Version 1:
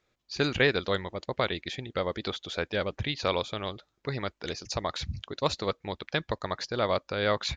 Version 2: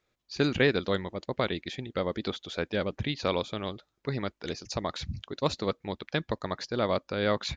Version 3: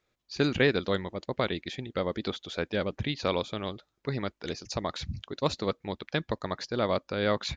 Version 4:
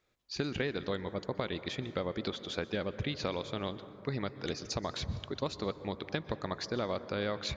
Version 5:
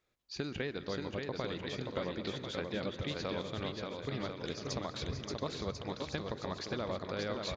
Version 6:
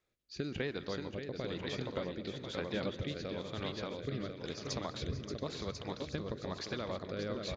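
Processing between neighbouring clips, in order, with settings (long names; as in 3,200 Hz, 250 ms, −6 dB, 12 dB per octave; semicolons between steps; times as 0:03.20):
dynamic equaliser 230 Hz, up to +7 dB, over −43 dBFS, Q 0.81; level −2.5 dB
no processing that can be heard
downward compressor 10 to 1, threshold −30 dBFS, peak gain reduction 12 dB; convolution reverb RT60 3.0 s, pre-delay 113 ms, DRR 13 dB
bouncing-ball delay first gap 580 ms, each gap 0.8×, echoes 5; level −4 dB
rotating-speaker cabinet horn 1 Hz; level +1 dB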